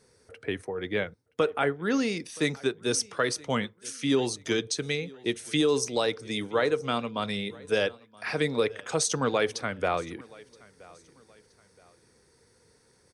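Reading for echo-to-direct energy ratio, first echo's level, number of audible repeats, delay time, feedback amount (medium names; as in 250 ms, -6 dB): -23.0 dB, -23.5 dB, 2, 973 ms, 36%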